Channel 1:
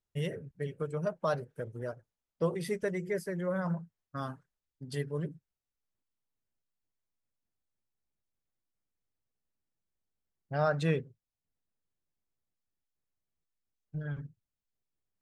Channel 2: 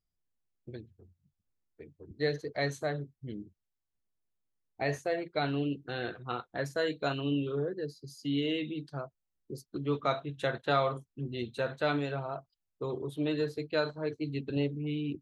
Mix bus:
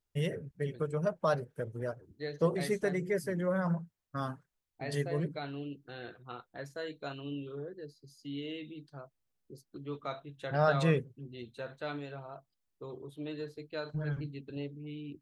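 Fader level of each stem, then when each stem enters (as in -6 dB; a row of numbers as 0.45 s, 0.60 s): +1.5 dB, -9.0 dB; 0.00 s, 0.00 s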